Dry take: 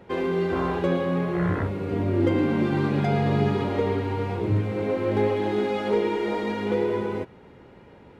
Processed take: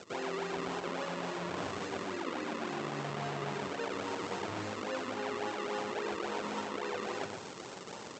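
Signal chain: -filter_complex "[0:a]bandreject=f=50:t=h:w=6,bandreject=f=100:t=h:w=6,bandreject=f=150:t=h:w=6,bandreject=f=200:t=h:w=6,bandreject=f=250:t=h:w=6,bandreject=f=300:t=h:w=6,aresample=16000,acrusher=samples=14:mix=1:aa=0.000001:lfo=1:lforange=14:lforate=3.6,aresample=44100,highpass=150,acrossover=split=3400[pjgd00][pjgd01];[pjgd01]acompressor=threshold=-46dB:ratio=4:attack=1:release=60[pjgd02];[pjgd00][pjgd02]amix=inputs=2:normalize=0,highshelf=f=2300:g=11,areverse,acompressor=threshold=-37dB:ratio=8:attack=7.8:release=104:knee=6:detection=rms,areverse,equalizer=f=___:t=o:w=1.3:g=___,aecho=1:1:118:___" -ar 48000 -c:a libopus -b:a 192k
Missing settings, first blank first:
880, 7.5, 0.473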